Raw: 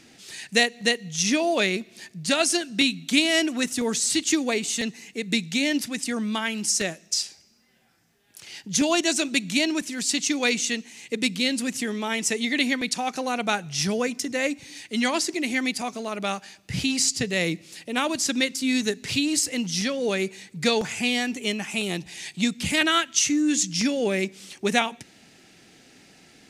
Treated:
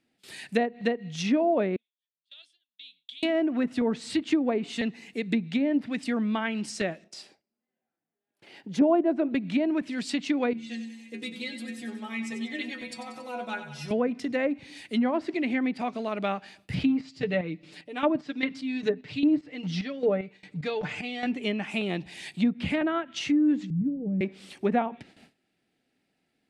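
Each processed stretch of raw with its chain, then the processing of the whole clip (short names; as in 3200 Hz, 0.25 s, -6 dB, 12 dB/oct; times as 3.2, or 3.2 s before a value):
1.76–3.23 compressor 12:1, threshold -25 dBFS + band-pass 3400 Hz, Q 13 + three-band expander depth 100%
7.04–9.35 HPF 400 Hz + tilt -4.5 dB/oct
10.53–13.91 metallic resonator 73 Hz, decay 0.4 s, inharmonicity 0.008 + feedback echo 93 ms, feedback 58%, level -10 dB
16.83–21.26 comb 6.7 ms, depth 70% + chopper 2.5 Hz, depth 65%, duty 45% + air absorption 83 m
23.7–24.21 block floating point 5-bit + synth low-pass 170 Hz, resonance Q 1.6 + comb 6.5 ms, depth 60%
whole clip: fifteen-band EQ 250 Hz +3 dB, 630 Hz +3 dB, 6300 Hz -11 dB; treble ducked by the level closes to 990 Hz, closed at -18 dBFS; gate with hold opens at -40 dBFS; gain -2 dB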